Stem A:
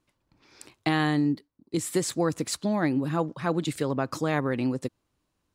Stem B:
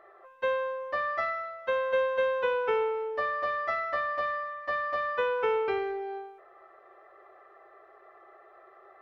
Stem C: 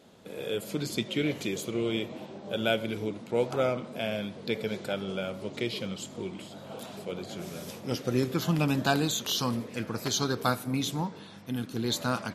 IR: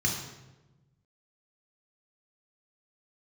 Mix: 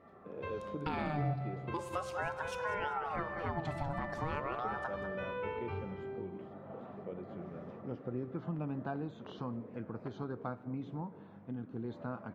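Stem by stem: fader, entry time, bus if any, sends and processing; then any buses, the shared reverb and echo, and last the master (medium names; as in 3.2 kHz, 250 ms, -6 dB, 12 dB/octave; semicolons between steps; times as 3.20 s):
+0.5 dB, 0.00 s, send -19 dB, echo send -12 dB, treble shelf 5.4 kHz -7.5 dB; ring modulator with a swept carrier 850 Hz, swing 50%, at 0.39 Hz
-7.5 dB, 0.00 s, send -4 dB, no echo send, peaking EQ 79 Hz +12.5 dB 1.8 oct
-4.5 dB, 0.00 s, muted 1.74–4.64 s, no send, no echo send, low-pass 1.3 kHz 12 dB/octave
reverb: on, RT60 1.1 s, pre-delay 3 ms
echo: feedback delay 194 ms, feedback 34%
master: treble shelf 3.2 kHz -10.5 dB; compression 2:1, threshold -40 dBFS, peak gain reduction 11.5 dB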